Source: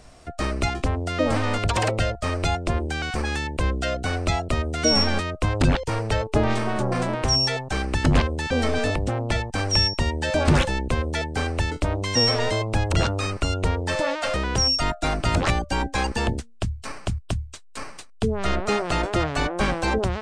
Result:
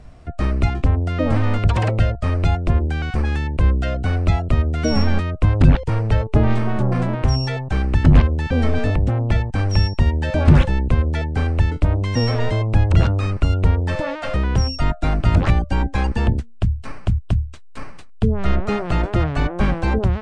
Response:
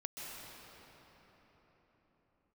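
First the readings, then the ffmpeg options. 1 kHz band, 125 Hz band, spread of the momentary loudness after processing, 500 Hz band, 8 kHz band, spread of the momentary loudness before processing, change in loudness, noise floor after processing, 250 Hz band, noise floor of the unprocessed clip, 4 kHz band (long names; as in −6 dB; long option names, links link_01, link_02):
−1.0 dB, +8.5 dB, 7 LU, 0.0 dB, below −10 dB, 8 LU, +4.0 dB, −37 dBFS, +4.5 dB, −44 dBFS, −7.5 dB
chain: -af "bass=frequency=250:gain=10,treble=frequency=4000:gain=-11,volume=-1dB"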